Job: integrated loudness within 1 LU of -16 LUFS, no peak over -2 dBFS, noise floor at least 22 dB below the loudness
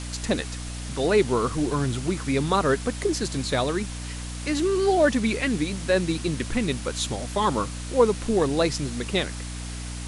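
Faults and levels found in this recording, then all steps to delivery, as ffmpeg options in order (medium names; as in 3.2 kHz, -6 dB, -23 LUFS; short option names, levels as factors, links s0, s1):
hum 60 Hz; highest harmonic 300 Hz; hum level -32 dBFS; noise floor -34 dBFS; noise floor target -47 dBFS; loudness -25.0 LUFS; peak level -6.0 dBFS; loudness target -16.0 LUFS
-> -af "bandreject=f=60:t=h:w=4,bandreject=f=120:t=h:w=4,bandreject=f=180:t=h:w=4,bandreject=f=240:t=h:w=4,bandreject=f=300:t=h:w=4"
-af "afftdn=nr=13:nf=-34"
-af "volume=2.82,alimiter=limit=0.794:level=0:latency=1"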